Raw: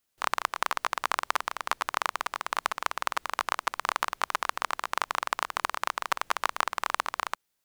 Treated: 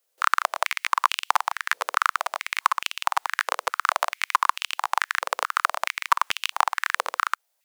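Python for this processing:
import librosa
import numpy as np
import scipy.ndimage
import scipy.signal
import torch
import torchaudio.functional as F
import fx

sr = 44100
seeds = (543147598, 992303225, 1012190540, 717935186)

y = fx.high_shelf(x, sr, hz=4300.0, db=5.0)
y = fx.filter_held_highpass(y, sr, hz=4.6, low_hz=500.0, high_hz=2800.0)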